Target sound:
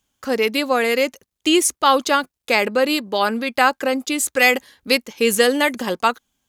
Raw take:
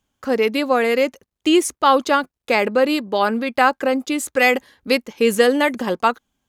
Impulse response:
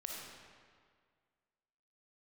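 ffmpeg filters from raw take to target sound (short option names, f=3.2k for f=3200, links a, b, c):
-af "highshelf=f=2.5k:g=9,volume=-2dB"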